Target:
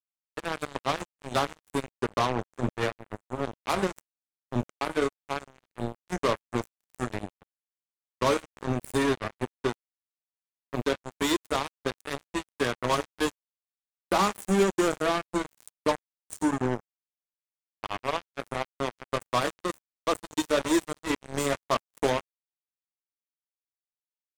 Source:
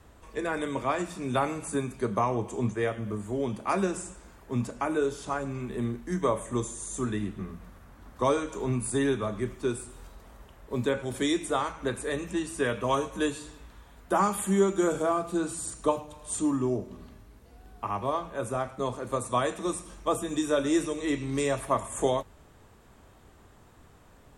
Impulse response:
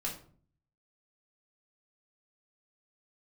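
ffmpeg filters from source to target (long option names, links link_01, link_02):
-af "acrusher=bits=3:mix=0:aa=0.5"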